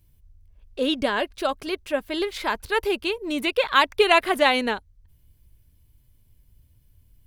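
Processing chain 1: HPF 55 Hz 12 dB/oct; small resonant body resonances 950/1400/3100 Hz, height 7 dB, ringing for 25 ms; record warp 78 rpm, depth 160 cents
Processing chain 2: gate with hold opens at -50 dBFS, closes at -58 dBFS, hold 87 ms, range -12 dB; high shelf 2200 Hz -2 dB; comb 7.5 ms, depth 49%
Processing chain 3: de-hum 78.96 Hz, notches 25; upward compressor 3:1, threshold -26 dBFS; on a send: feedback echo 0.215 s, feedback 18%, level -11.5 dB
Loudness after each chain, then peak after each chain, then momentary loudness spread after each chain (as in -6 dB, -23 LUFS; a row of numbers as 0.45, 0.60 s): -22.0, -22.5, -23.0 LUFS; -1.5, -2.0, -4.0 dBFS; 11, 10, 12 LU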